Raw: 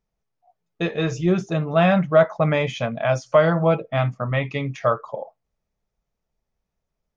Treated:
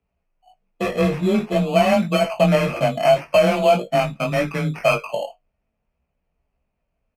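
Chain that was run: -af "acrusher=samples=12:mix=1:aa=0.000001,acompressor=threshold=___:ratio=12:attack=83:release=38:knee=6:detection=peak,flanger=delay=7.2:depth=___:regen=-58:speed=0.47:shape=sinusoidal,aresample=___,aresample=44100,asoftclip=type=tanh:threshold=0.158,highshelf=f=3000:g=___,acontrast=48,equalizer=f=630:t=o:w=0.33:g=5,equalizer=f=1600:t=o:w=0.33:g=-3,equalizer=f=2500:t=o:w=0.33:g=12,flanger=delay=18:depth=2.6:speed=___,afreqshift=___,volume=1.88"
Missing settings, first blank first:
0.0708, 3.5, 32000, -10.5, 1.8, 22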